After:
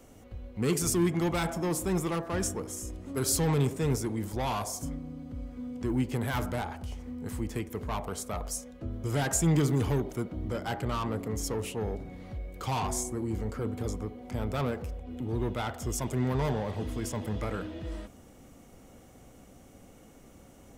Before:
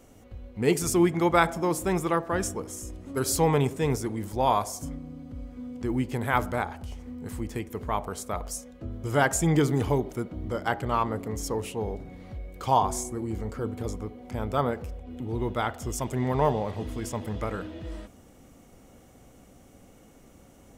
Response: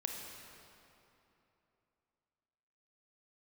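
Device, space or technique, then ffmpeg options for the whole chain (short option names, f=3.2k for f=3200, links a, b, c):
one-band saturation: -filter_complex "[0:a]acrossover=split=260|3400[a][b][c];[b]asoftclip=type=tanh:threshold=-30dB[d];[a][d][c]amix=inputs=3:normalize=0"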